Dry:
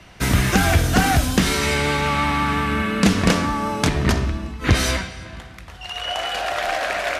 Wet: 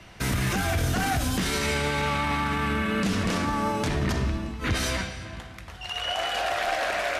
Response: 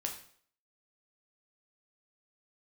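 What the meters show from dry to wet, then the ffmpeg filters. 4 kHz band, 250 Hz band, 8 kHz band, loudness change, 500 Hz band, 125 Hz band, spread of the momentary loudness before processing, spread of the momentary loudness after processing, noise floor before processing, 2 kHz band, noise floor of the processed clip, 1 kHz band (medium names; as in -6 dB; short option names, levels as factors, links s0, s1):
-5.5 dB, -7.5 dB, -7.0 dB, -6.5 dB, -5.5 dB, -7.0 dB, 12 LU, 6 LU, -40 dBFS, -6.0 dB, -43 dBFS, -5.5 dB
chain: -filter_complex "[0:a]alimiter=limit=0.168:level=0:latency=1:release=24,asplit=2[s0][s1];[1:a]atrim=start_sample=2205,asetrate=26019,aresample=44100,adelay=9[s2];[s1][s2]afir=irnorm=-1:irlink=0,volume=0.158[s3];[s0][s3]amix=inputs=2:normalize=0,volume=0.75"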